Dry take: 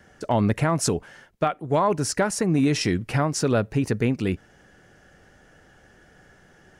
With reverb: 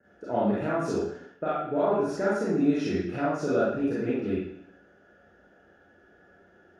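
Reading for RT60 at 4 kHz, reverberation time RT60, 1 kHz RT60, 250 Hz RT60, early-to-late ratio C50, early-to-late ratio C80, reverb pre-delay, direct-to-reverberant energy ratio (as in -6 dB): 0.70 s, 0.70 s, 0.65 s, 0.70 s, -2.5 dB, 3.0 dB, 27 ms, -9.0 dB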